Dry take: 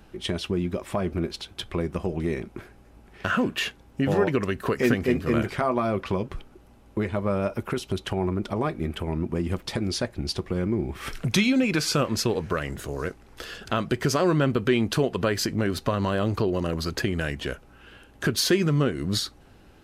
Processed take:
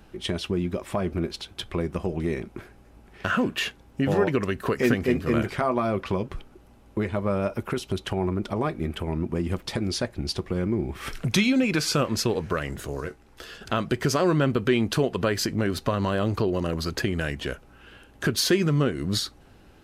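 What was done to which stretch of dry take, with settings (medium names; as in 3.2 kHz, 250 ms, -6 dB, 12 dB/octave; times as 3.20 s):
13.00–13.61 s: feedback comb 74 Hz, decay 0.15 s, mix 70%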